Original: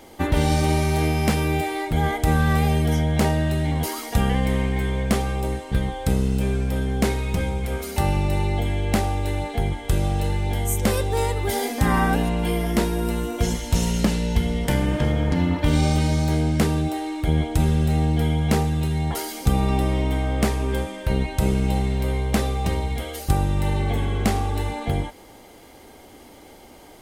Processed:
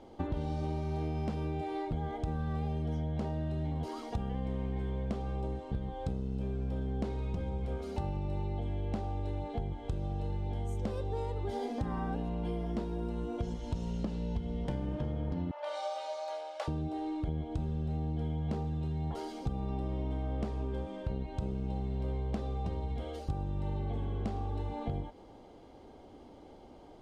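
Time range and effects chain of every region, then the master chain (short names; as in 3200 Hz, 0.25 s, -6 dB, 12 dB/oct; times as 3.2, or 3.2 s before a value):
15.51–16.68 elliptic high-pass 590 Hz, stop band 60 dB + comb 3.5 ms, depth 61%
whole clip: LPF 3000 Hz 12 dB/oct; bell 2000 Hz -12.5 dB 1.2 oct; compressor 6:1, threshold -26 dBFS; gain -5.5 dB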